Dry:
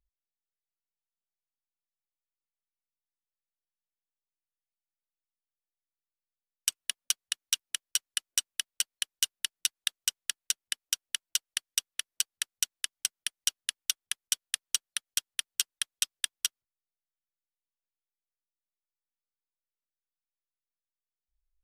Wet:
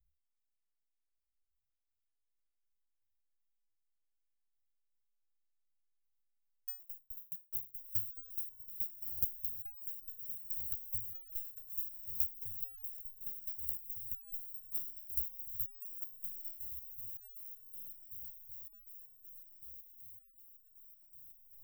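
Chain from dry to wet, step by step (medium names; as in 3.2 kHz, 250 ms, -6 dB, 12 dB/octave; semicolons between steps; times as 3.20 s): block-companded coder 3-bit; inverse Chebyshev band-stop 300–9300 Hz, stop band 50 dB; echo that smears into a reverb 1436 ms, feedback 60%, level -5 dB; resonator arpeggio 5.3 Hz 68–1400 Hz; trim +16.5 dB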